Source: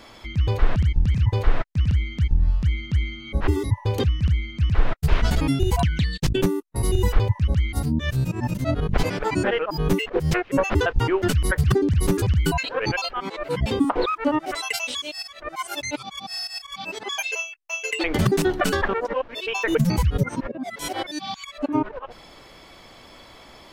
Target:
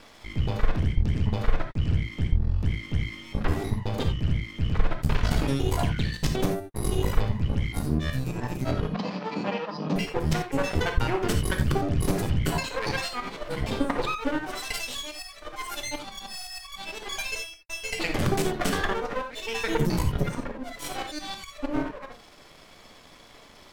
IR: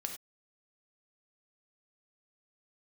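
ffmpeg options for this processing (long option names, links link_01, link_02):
-filter_complex "[0:a]aeval=exprs='max(val(0),0)':channel_layout=same,asettb=1/sr,asplit=3[link_01][link_02][link_03];[link_01]atrim=end=8.894[link_04];[link_02]atrim=start=8.89:end=9.96,asetpts=PTS-STARTPTS,afade=type=in:duration=0.004:curve=qsin,afade=type=out:start_time=1.066:duration=0.004:curve=qsin,highpass=frequency=180:width=0.5412,highpass=frequency=180:width=1.3066,equalizer=frequency=190:width_type=q:width=4:gain=7,equalizer=frequency=390:width_type=q:width=4:gain=-9,equalizer=frequency=1500:width_type=q:width=4:gain=-8,equalizer=frequency=2100:width_type=q:width=4:gain=-8,equalizer=frequency=3400:width_type=q:width=4:gain=-5,lowpass=frequency=4800:width=0.5412,lowpass=frequency=4800:width=1.3066[link_05];[link_03]atrim=start=9.956[link_06];[link_04][link_05]acrossfade=duration=0.004:curve1=hsin:curve2=qsin[link_07];[link_07][link_06]acrossfade=duration=0.004:curve1=qsin:curve2=hsin[link_08];[1:a]atrim=start_sample=2205,afade=type=out:start_time=0.13:duration=0.01,atrim=end_sample=6174,asetrate=38367,aresample=44100[link_09];[link_08][link_09]afir=irnorm=-1:irlink=0"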